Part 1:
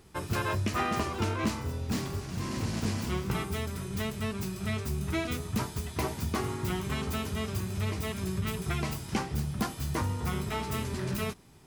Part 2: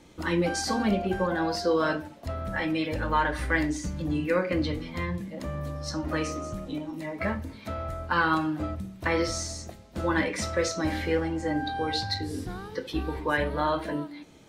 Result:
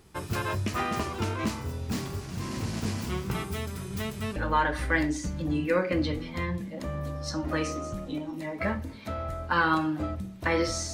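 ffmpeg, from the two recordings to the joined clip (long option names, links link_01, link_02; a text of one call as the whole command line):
ffmpeg -i cue0.wav -i cue1.wav -filter_complex "[0:a]apad=whole_dur=10.93,atrim=end=10.93,atrim=end=4.362[link_01];[1:a]atrim=start=2.958:end=9.53[link_02];[link_01][link_02]acrossfade=duration=0.004:curve1=hsin:curve2=hsin" out.wav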